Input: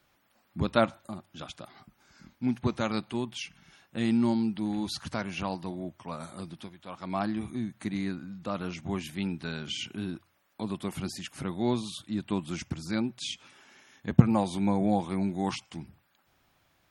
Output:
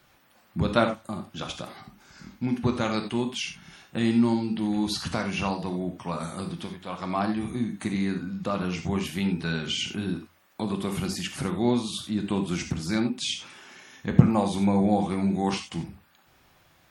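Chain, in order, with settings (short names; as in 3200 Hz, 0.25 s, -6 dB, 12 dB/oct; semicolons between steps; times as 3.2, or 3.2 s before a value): in parallel at +2 dB: compressor, threshold -36 dBFS, peak gain reduction 24 dB; on the sum: non-linear reverb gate 0.11 s flat, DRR 4.5 dB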